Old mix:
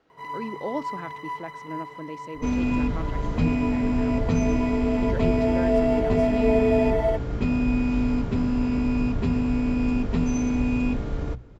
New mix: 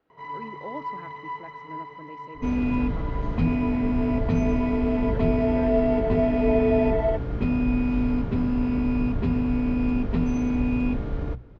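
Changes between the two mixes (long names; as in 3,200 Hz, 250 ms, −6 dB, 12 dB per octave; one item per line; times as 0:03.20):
speech −7.0 dB
master: add high-frequency loss of the air 180 metres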